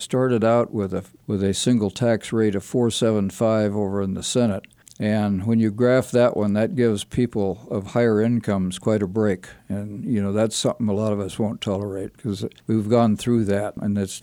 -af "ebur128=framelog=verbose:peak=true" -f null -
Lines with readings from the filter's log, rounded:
Integrated loudness:
  I:         -22.1 LUFS
  Threshold: -32.1 LUFS
Loudness range:
  LRA:         2.8 LU
  Threshold: -42.2 LUFS
  LRA low:   -23.8 LUFS
  LRA high:  -21.0 LUFS
True peak:
  Peak:       -5.5 dBFS